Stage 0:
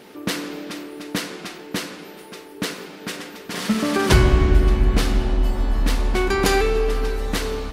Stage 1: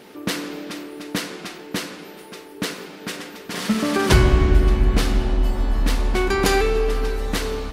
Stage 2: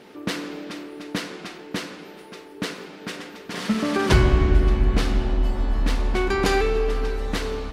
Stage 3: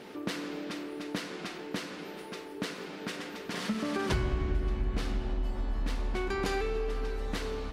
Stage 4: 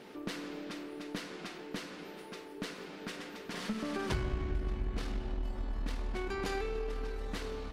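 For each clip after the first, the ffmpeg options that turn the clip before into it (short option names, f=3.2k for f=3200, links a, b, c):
-af anull
-af "highshelf=f=9k:g=-12,volume=-2dB"
-af "acompressor=threshold=-37dB:ratio=2"
-af "aeval=exprs='0.158*(cos(1*acos(clip(val(0)/0.158,-1,1)))-cos(1*PI/2))+0.0112*(cos(4*acos(clip(val(0)/0.158,-1,1)))-cos(4*PI/2))':c=same,volume=-4.5dB"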